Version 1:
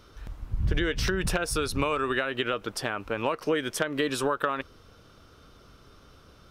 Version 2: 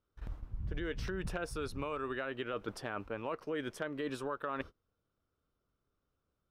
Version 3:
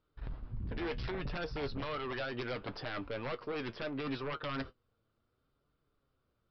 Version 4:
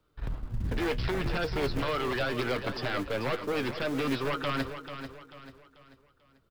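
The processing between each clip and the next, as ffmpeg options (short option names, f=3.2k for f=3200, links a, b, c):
-af "highshelf=f=2.5k:g=-10,agate=range=-29dB:threshold=-41dB:ratio=16:detection=peak,areverse,acompressor=threshold=-35dB:ratio=6,areverse"
-af "aresample=11025,aeval=exprs='0.075*sin(PI/2*3.98*val(0)/0.075)':c=same,aresample=44100,flanger=delay=6.3:depth=2.9:regen=60:speed=0.69:shape=triangular,volume=-7dB"
-filter_complex "[0:a]aecho=1:1:440|880|1320|1760:0.316|0.123|0.0481|0.0188,acrossover=split=180|440|1300[a][b][c][d];[b]acrusher=bits=2:mode=log:mix=0:aa=0.000001[e];[a][e][c][d]amix=inputs=4:normalize=0,volume=7.5dB"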